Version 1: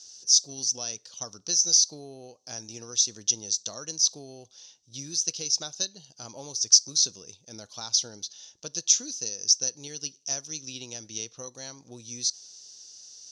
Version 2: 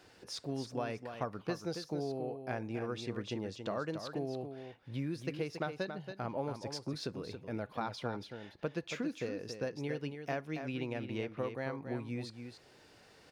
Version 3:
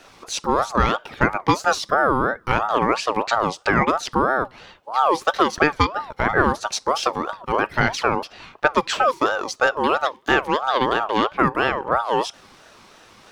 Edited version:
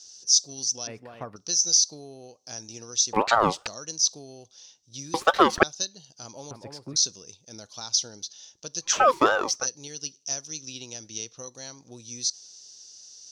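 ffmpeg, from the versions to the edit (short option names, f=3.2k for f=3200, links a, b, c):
-filter_complex "[1:a]asplit=2[a][b];[2:a]asplit=3[c][d][e];[0:a]asplit=6[f][g][h][i][j][k];[f]atrim=end=0.872[l];[a]atrim=start=0.868:end=1.362[m];[g]atrim=start=1.358:end=3.132[n];[c]atrim=start=3.128:end=3.672[o];[h]atrim=start=3.668:end=5.142[p];[d]atrim=start=5.138:end=5.632[q];[i]atrim=start=5.628:end=6.512[r];[b]atrim=start=6.508:end=6.962[s];[j]atrim=start=6.958:end=9.05[t];[e]atrim=start=8.81:end=9.67[u];[k]atrim=start=9.43[v];[l][m]acrossfade=d=0.004:c1=hsin:c2=hsin[w];[w][n]acrossfade=d=0.004:c1=hsin:c2=hsin[x];[x][o]acrossfade=d=0.004:c1=hsin:c2=hsin[y];[y][p]acrossfade=d=0.004:c1=hsin:c2=hsin[z];[z][q]acrossfade=d=0.004:c1=hsin:c2=hsin[aa];[aa][r]acrossfade=d=0.004:c1=hsin:c2=hsin[ab];[ab][s]acrossfade=d=0.004:c1=hsin:c2=hsin[ac];[ac][t]acrossfade=d=0.004:c1=hsin:c2=hsin[ad];[ad][u]acrossfade=d=0.24:c1=tri:c2=tri[ae];[ae][v]acrossfade=d=0.24:c1=tri:c2=tri"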